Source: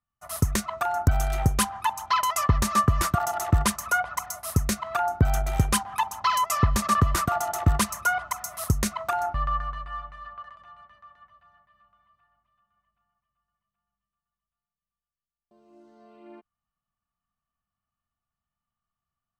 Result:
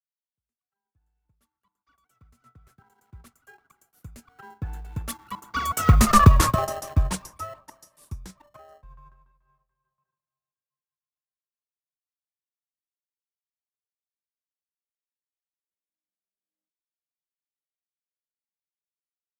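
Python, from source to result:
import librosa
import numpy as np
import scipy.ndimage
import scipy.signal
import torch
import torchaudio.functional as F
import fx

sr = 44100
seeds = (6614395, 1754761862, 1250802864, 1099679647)

p1 = fx.fade_in_head(x, sr, length_s=4.92)
p2 = fx.doppler_pass(p1, sr, speed_mps=39, closest_m=11.0, pass_at_s=6.18)
p3 = fx.sample_hold(p2, sr, seeds[0], rate_hz=1200.0, jitter_pct=0)
p4 = p2 + F.gain(torch.from_numpy(p3), -7.0).numpy()
y = fx.band_widen(p4, sr, depth_pct=70)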